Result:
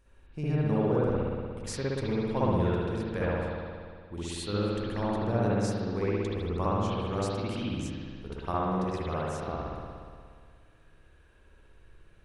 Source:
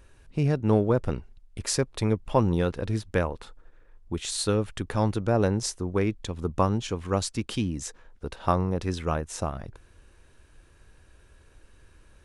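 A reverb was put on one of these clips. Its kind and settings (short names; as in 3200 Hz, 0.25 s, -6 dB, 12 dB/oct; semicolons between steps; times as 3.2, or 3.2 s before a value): spring tank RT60 2 s, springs 59 ms, chirp 20 ms, DRR -8.5 dB; gain -11.5 dB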